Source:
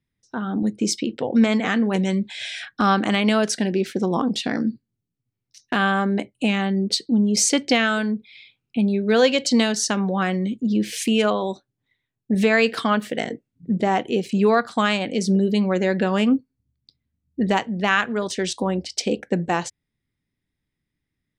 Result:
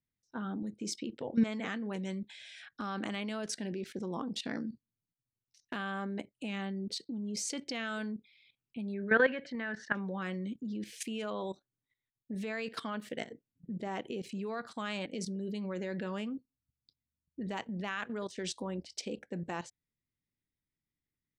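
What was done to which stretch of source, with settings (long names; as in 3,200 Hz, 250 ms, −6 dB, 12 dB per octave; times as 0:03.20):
0:08.94–0:09.95: low-pass with resonance 1,700 Hz, resonance Q 5.3
whole clip: notch filter 740 Hz, Q 14; output level in coarse steps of 14 dB; level −9 dB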